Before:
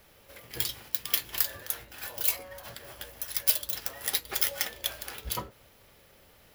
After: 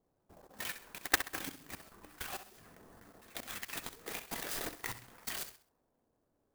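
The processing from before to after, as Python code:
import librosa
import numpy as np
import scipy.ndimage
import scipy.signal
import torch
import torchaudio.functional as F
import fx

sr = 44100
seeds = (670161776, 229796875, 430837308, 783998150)

y = fx.band_shuffle(x, sr, order='2341')
y = fx.env_lowpass(y, sr, base_hz=490.0, full_db=-29.5)
y = fx.high_shelf(y, sr, hz=9600.0, db=8.0, at=(0.85, 1.26))
y = fx.level_steps(y, sr, step_db=21)
y = fx.hum_notches(y, sr, base_hz=60, count=2)
y = fx.echo_feedback(y, sr, ms=65, feedback_pct=33, wet_db=-11.0)
y = np.repeat(scipy.signal.resample_poly(y, 1, 4), 4)[:len(y)]
y = fx.clock_jitter(y, sr, seeds[0], jitter_ms=0.054)
y = y * librosa.db_to_amplitude(5.0)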